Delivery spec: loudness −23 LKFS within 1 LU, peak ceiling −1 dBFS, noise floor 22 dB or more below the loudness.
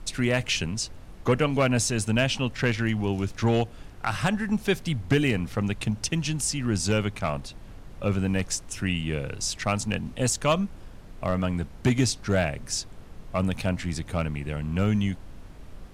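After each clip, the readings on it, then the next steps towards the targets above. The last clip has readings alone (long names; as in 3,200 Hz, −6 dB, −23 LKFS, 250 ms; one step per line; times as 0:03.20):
share of clipped samples 0.3%; peaks flattened at −14.0 dBFS; background noise floor −45 dBFS; target noise floor −49 dBFS; integrated loudness −27.0 LKFS; sample peak −14.0 dBFS; target loudness −23.0 LKFS
→ clipped peaks rebuilt −14 dBFS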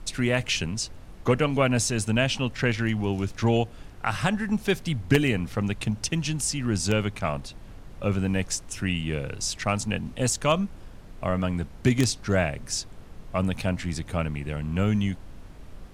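share of clipped samples 0.0%; background noise floor −45 dBFS; target noise floor −49 dBFS
→ noise reduction from a noise print 6 dB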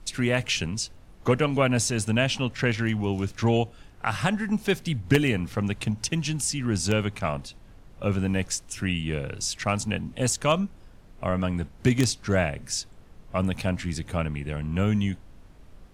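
background noise floor −50 dBFS; integrated loudness −26.5 LKFS; sample peak −5.0 dBFS; target loudness −23.0 LKFS
→ level +3.5 dB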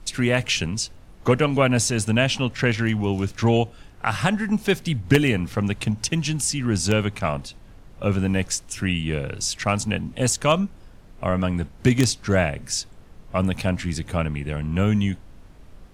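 integrated loudness −23.0 LKFS; sample peak −1.5 dBFS; background noise floor −47 dBFS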